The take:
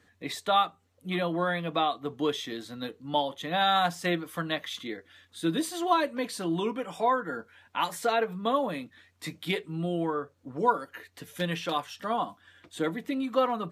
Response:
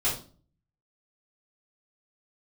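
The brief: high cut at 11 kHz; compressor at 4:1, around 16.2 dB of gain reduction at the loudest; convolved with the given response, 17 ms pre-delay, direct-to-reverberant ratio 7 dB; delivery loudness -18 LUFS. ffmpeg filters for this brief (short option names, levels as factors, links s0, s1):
-filter_complex "[0:a]lowpass=11000,acompressor=threshold=0.0112:ratio=4,asplit=2[s0][s1];[1:a]atrim=start_sample=2205,adelay=17[s2];[s1][s2]afir=irnorm=-1:irlink=0,volume=0.15[s3];[s0][s3]amix=inputs=2:normalize=0,volume=14.1"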